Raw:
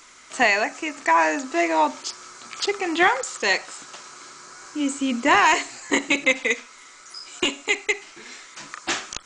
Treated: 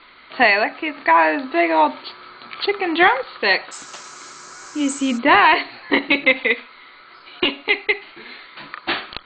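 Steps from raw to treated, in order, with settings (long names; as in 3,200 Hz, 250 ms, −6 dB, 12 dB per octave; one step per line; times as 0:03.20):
Chebyshev low-pass filter 4,500 Hz, order 10, from 0:03.71 8,500 Hz, from 0:05.17 4,500 Hz
level +4.5 dB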